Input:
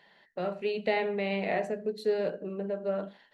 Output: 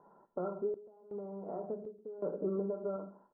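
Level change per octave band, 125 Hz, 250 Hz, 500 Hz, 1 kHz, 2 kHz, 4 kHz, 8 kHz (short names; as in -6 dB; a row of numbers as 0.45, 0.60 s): -5.5 dB, -5.5 dB, -7.5 dB, -11.5 dB, under -30 dB, under -40 dB, n/a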